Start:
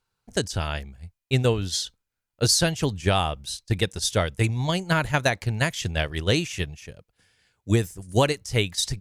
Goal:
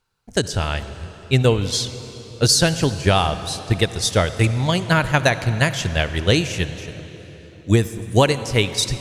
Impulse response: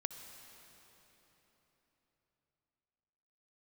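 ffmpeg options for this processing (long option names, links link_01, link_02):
-filter_complex "[0:a]asplit=2[link_01][link_02];[1:a]atrim=start_sample=2205,highshelf=frequency=11000:gain=-8.5[link_03];[link_02][link_03]afir=irnorm=-1:irlink=0,volume=3dB[link_04];[link_01][link_04]amix=inputs=2:normalize=0,volume=-1.5dB"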